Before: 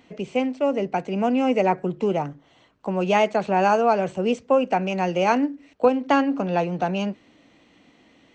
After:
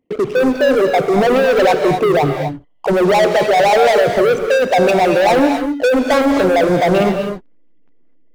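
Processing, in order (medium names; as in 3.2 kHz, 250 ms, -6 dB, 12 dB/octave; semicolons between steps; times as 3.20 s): resonances exaggerated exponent 3; waveshaping leveller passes 5; in parallel at -6.5 dB: hysteresis with a dead band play -28 dBFS; on the sum: gated-style reverb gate 280 ms rising, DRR 5.5 dB; trim -4.5 dB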